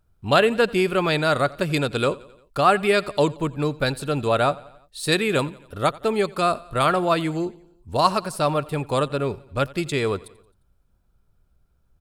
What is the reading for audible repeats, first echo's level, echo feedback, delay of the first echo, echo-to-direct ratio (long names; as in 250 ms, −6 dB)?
3, −22.0 dB, 57%, 88 ms, −20.5 dB